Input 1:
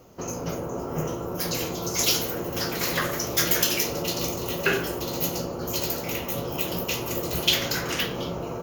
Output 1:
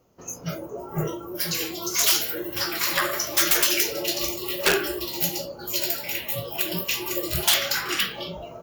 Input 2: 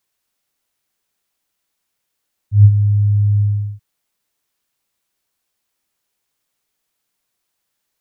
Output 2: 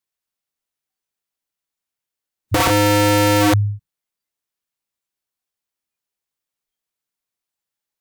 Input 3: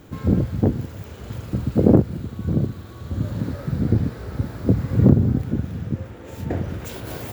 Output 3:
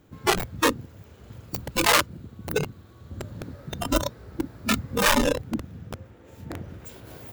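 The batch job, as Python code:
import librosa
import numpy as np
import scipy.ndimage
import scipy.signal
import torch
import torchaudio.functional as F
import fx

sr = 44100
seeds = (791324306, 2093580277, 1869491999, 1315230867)

y = (np.mod(10.0 ** (14.0 / 20.0) * x + 1.0, 2.0) - 1.0) / 10.0 ** (14.0 / 20.0)
y = fx.noise_reduce_blind(y, sr, reduce_db=15)
y = y * librosa.db_to_amplitude(3.5)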